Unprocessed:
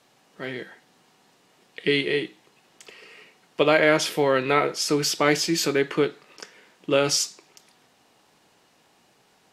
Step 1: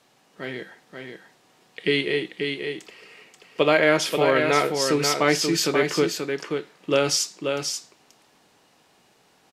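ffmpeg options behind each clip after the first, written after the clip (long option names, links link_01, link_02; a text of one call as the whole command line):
ffmpeg -i in.wav -af "aecho=1:1:533:0.531" out.wav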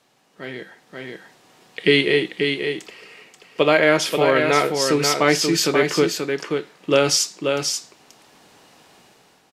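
ffmpeg -i in.wav -af "dynaudnorm=framelen=390:gausssize=5:maxgain=12dB,volume=-1dB" out.wav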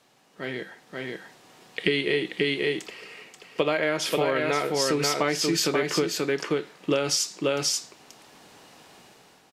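ffmpeg -i in.wav -af "acompressor=threshold=-20dB:ratio=12" out.wav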